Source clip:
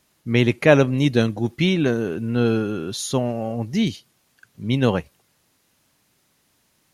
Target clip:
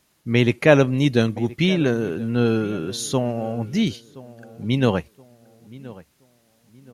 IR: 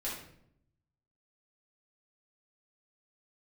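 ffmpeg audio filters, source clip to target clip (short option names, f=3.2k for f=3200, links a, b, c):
-filter_complex "[0:a]asplit=2[a][b];[b]adelay=1023,lowpass=f=1.9k:p=1,volume=-19dB,asplit=2[c][d];[d]adelay=1023,lowpass=f=1.9k:p=1,volume=0.35,asplit=2[e][f];[f]adelay=1023,lowpass=f=1.9k:p=1,volume=0.35[g];[a][c][e][g]amix=inputs=4:normalize=0"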